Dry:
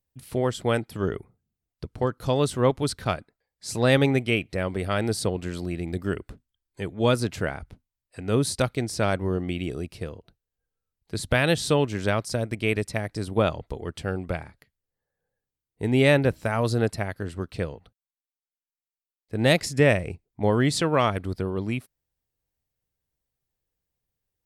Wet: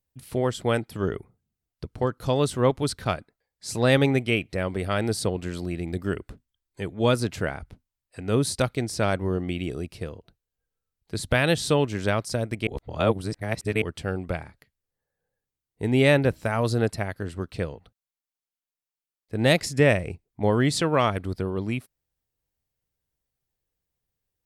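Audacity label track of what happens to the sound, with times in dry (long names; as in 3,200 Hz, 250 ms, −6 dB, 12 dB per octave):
12.670000	13.820000	reverse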